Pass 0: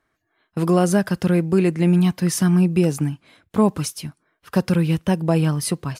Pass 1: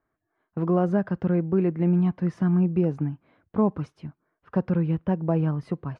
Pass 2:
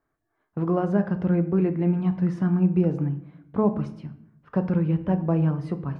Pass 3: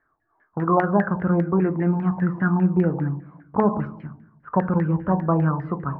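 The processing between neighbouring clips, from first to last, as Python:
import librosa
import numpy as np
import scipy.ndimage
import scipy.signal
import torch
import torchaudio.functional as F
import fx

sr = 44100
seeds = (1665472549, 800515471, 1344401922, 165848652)

y1 = scipy.signal.sosfilt(scipy.signal.butter(2, 1300.0, 'lowpass', fs=sr, output='sos'), x)
y1 = y1 * librosa.db_to_amplitude(-5.0)
y2 = fx.room_shoebox(y1, sr, seeds[0], volume_m3=130.0, walls='mixed', distance_m=0.33)
y3 = fx.filter_lfo_lowpass(y2, sr, shape='saw_down', hz=5.0, low_hz=820.0, high_hz=1900.0, q=7.5)
y3 = y3 * librosa.db_to_amplitude(1.0)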